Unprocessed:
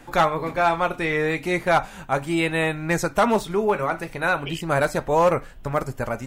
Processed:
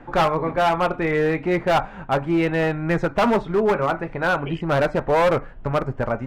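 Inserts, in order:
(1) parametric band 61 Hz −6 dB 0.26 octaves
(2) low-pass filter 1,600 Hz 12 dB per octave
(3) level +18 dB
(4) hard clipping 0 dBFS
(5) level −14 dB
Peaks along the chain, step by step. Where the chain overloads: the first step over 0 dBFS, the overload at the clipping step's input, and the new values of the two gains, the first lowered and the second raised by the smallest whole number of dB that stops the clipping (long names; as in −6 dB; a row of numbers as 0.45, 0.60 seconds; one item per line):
−10.0, −10.0, +8.0, 0.0, −14.0 dBFS
step 3, 8.0 dB
step 3 +10 dB, step 5 −6 dB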